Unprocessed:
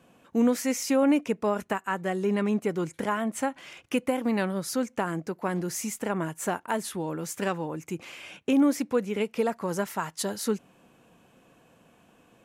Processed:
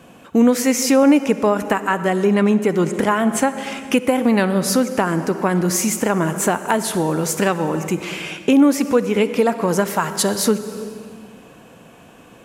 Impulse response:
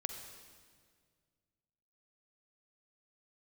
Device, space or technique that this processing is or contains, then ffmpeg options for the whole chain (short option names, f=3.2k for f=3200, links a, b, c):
ducked reverb: -filter_complex "[0:a]asplit=3[a][b][c];[1:a]atrim=start_sample=2205[d];[b][d]afir=irnorm=-1:irlink=0[e];[c]apad=whole_len=548899[f];[e][f]sidechaincompress=threshold=-28dB:ratio=8:attack=9.1:release=368,volume=5dB[g];[a][g]amix=inputs=2:normalize=0,volume=5.5dB"